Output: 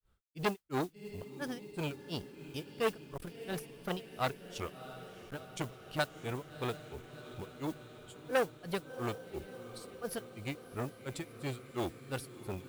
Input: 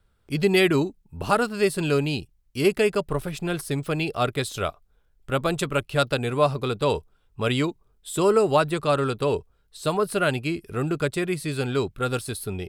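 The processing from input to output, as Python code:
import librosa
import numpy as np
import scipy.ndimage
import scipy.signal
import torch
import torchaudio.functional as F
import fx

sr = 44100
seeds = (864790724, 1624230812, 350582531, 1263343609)

y = fx.granulator(x, sr, seeds[0], grain_ms=226.0, per_s=2.9, spray_ms=26.0, spread_st=3)
y = fx.echo_diffused(y, sr, ms=678, feedback_pct=70, wet_db=-15.5)
y = fx.mod_noise(y, sr, seeds[1], snr_db=21)
y = fx.transformer_sat(y, sr, knee_hz=1600.0)
y = F.gain(torch.from_numpy(y), -5.5).numpy()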